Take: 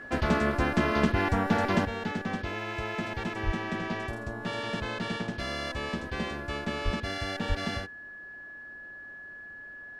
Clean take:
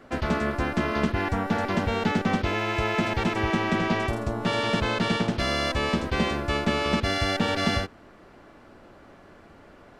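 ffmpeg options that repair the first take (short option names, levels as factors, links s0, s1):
-filter_complex "[0:a]bandreject=f=1700:w=30,asplit=3[s0][s1][s2];[s0]afade=t=out:st=3.45:d=0.02[s3];[s1]highpass=f=140:w=0.5412,highpass=f=140:w=1.3066,afade=t=in:st=3.45:d=0.02,afade=t=out:st=3.57:d=0.02[s4];[s2]afade=t=in:st=3.57:d=0.02[s5];[s3][s4][s5]amix=inputs=3:normalize=0,asplit=3[s6][s7][s8];[s6]afade=t=out:st=6.84:d=0.02[s9];[s7]highpass=f=140:w=0.5412,highpass=f=140:w=1.3066,afade=t=in:st=6.84:d=0.02,afade=t=out:st=6.96:d=0.02[s10];[s8]afade=t=in:st=6.96:d=0.02[s11];[s9][s10][s11]amix=inputs=3:normalize=0,asplit=3[s12][s13][s14];[s12]afade=t=out:st=7.48:d=0.02[s15];[s13]highpass=f=140:w=0.5412,highpass=f=140:w=1.3066,afade=t=in:st=7.48:d=0.02,afade=t=out:st=7.6:d=0.02[s16];[s14]afade=t=in:st=7.6:d=0.02[s17];[s15][s16][s17]amix=inputs=3:normalize=0,asetnsamples=n=441:p=0,asendcmd='1.85 volume volume 8.5dB',volume=1"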